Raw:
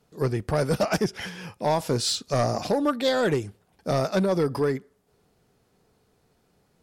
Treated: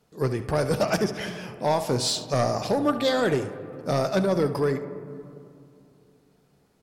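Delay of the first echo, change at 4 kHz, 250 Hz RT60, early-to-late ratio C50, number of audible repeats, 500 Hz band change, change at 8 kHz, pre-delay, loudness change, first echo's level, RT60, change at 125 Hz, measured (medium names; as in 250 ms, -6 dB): 71 ms, 0.0 dB, 3.2 s, 10.0 dB, 1, +0.5 dB, 0.0 dB, 14 ms, 0.0 dB, -14.5 dB, 2.5 s, -0.5 dB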